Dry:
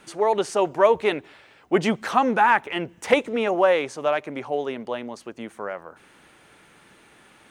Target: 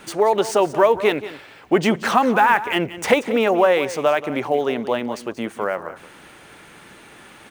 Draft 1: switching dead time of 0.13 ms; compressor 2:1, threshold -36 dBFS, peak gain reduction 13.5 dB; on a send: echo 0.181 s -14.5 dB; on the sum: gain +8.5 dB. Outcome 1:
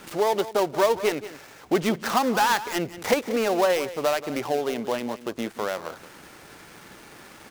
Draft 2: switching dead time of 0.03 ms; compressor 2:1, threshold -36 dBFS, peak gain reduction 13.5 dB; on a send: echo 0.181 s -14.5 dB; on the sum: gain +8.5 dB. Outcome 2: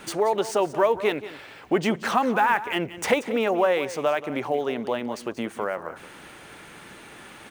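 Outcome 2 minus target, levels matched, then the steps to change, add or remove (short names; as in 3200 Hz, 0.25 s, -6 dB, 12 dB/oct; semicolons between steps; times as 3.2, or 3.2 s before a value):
compressor: peak gain reduction +5.5 dB
change: compressor 2:1, threshold -25 dBFS, peak gain reduction 8 dB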